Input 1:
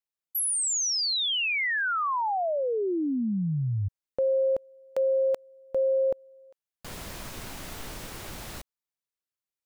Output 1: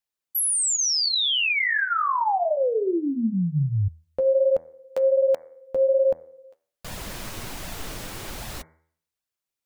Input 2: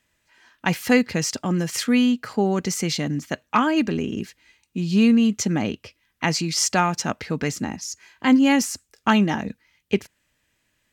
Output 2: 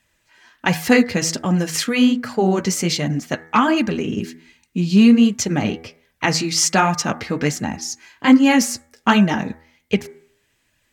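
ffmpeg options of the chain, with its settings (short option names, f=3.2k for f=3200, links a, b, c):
-af "bandreject=f=81.19:t=h:w=4,bandreject=f=162.38:t=h:w=4,bandreject=f=243.57:t=h:w=4,bandreject=f=324.76:t=h:w=4,bandreject=f=405.95:t=h:w=4,bandreject=f=487.14:t=h:w=4,bandreject=f=568.33:t=h:w=4,bandreject=f=649.52:t=h:w=4,bandreject=f=730.71:t=h:w=4,bandreject=f=811.9:t=h:w=4,bandreject=f=893.09:t=h:w=4,bandreject=f=974.28:t=h:w=4,bandreject=f=1.05547k:t=h:w=4,bandreject=f=1.13666k:t=h:w=4,bandreject=f=1.21785k:t=h:w=4,bandreject=f=1.29904k:t=h:w=4,bandreject=f=1.38023k:t=h:w=4,bandreject=f=1.46142k:t=h:w=4,bandreject=f=1.54261k:t=h:w=4,bandreject=f=1.6238k:t=h:w=4,bandreject=f=1.70499k:t=h:w=4,bandreject=f=1.78618k:t=h:w=4,bandreject=f=1.86737k:t=h:w=4,bandreject=f=1.94856k:t=h:w=4,bandreject=f=2.02975k:t=h:w=4,bandreject=f=2.11094k:t=h:w=4,bandreject=f=2.19213k:t=h:w=4,bandreject=f=2.27332k:t=h:w=4,flanger=delay=1.1:depth=9:regen=-28:speed=1.3:shape=sinusoidal,volume=8dB"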